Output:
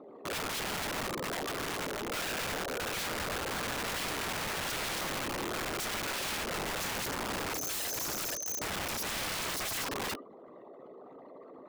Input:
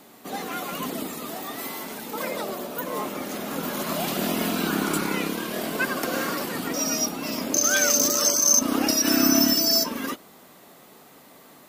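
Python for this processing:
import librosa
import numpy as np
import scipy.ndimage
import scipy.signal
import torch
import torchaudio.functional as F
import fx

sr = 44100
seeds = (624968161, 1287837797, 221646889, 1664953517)

y = fx.envelope_sharpen(x, sr, power=3.0)
y = scipy.signal.sosfilt(scipy.signal.butter(2, 3400.0, 'lowpass', fs=sr, output='sos'), y)
y = fx.rider(y, sr, range_db=3, speed_s=2.0)
y = fx.doubler(y, sr, ms=15.0, db=-11.0)
y = y + 10.0 ** (-15.5 / 20.0) * np.pad(y, (int(80 * sr / 1000.0), 0))[:len(y)]
y = (np.mod(10.0 ** (27.0 / 20.0) * y + 1.0, 2.0) - 1.0) / 10.0 ** (27.0 / 20.0)
y = F.gain(torch.from_numpy(y), -3.5).numpy()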